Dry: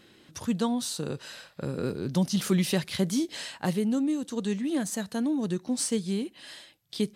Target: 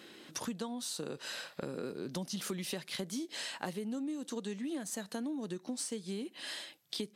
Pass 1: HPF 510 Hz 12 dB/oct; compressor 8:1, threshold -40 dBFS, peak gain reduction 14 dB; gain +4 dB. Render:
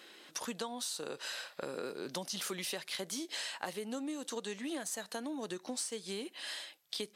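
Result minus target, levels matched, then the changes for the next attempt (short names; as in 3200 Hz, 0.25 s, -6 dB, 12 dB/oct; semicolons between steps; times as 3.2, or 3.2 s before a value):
250 Hz band -4.0 dB
change: HPF 230 Hz 12 dB/oct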